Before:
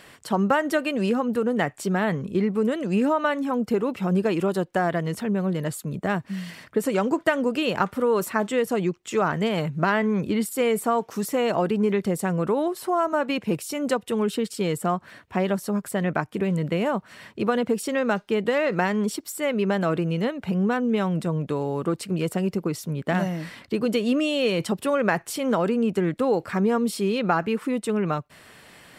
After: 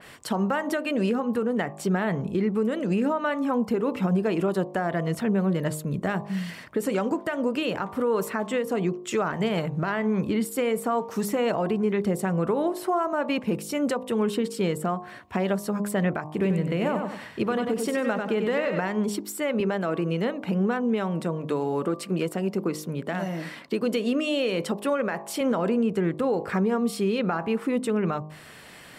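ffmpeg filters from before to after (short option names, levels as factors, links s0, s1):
-filter_complex "[0:a]asettb=1/sr,asplit=3[s0][s1][s2];[s0]atrim=end=16.314[s3];[s1]atrim=start=16.31:end=18.81,asetpts=PTS-STARTPTS,afade=t=in:d=0.004:c=qsin,afade=t=out:st=2.496:d=0.004:c=qsin,aecho=1:1:94|188|282|376:0.473|0.156|0.0515|0.017,atrim=end_sample=110250[s4];[s2]atrim=start=18.806[s5];[s3][s4]acrossfade=d=0.004:c1=hsin:c2=qsin[s6];[s6][s5]acrossfade=d=0.004:c1=qsin:c2=hsin,asettb=1/sr,asplit=3[s7][s8][s9];[s7]atrim=end=19.604[s10];[s8]atrim=start=19.6:end=25.41,asetpts=PTS-STARTPTS,afade=t=in:d=0.004:c=qsin,afade=t=out:st=5.806:d=0.004:c=qsin,highpass=190[s11];[s9]atrim=start=25.406[s12];[s10][s11]acrossfade=d=0.004:c1=hsin:c2=qsin[s13];[s13][s12]acrossfade=d=0.004:c1=qsin:c2=hsin,bandreject=f=51.26:t=h:w=4,bandreject=f=102.52:t=h:w=4,bandreject=f=153.78:t=h:w=4,bandreject=f=205.04:t=h:w=4,bandreject=f=256.3:t=h:w=4,bandreject=f=307.56:t=h:w=4,bandreject=f=358.82:t=h:w=4,bandreject=f=410.08:t=h:w=4,bandreject=f=461.34:t=h:w=4,bandreject=f=512.6:t=h:w=4,bandreject=f=563.86:t=h:w=4,bandreject=f=615.12:t=h:w=4,bandreject=f=666.38:t=h:w=4,bandreject=f=717.64:t=h:w=4,bandreject=f=768.9:t=h:w=4,bandreject=f=820.16:t=h:w=4,bandreject=f=871.42:t=h:w=4,bandreject=f=922.68:t=h:w=4,bandreject=f=973.94:t=h:w=4,bandreject=f=1025.2:t=h:w=4,bandreject=f=1076.46:t=h:w=4,bandreject=f=1127.72:t=h:w=4,bandreject=f=1178.98:t=h:w=4,alimiter=limit=0.119:level=0:latency=1:release=245,adynamicequalizer=threshold=0.00447:dfrequency=2800:dqfactor=0.7:tfrequency=2800:tqfactor=0.7:attack=5:release=100:ratio=0.375:range=2:mode=cutabove:tftype=highshelf,volume=1.33"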